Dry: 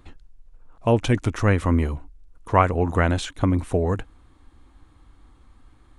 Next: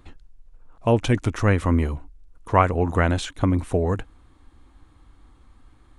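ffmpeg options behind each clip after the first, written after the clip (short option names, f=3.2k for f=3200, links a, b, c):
-af anull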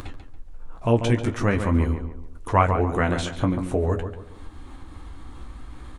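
-filter_complex "[0:a]acompressor=mode=upward:threshold=-23dB:ratio=2.5,flanger=delay=9.9:depth=7.4:regen=-33:speed=0.45:shape=sinusoidal,asplit=2[a][b];[b]adelay=141,lowpass=f=2.1k:p=1,volume=-7.5dB,asplit=2[c][d];[d]adelay=141,lowpass=f=2.1k:p=1,volume=0.38,asplit=2[e][f];[f]adelay=141,lowpass=f=2.1k:p=1,volume=0.38,asplit=2[g][h];[h]adelay=141,lowpass=f=2.1k:p=1,volume=0.38[i];[c][e][g][i]amix=inputs=4:normalize=0[j];[a][j]amix=inputs=2:normalize=0,volume=2dB"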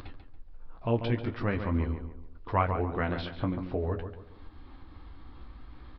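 -af "aresample=11025,aresample=44100,volume=-8dB"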